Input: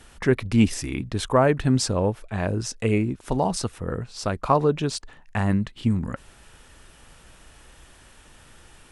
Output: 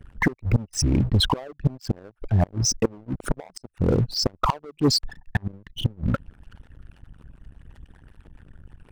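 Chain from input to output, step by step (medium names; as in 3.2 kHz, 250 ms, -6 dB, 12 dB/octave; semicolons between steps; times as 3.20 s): resonances exaggerated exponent 3; inverted gate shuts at -15 dBFS, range -29 dB; waveshaping leveller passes 3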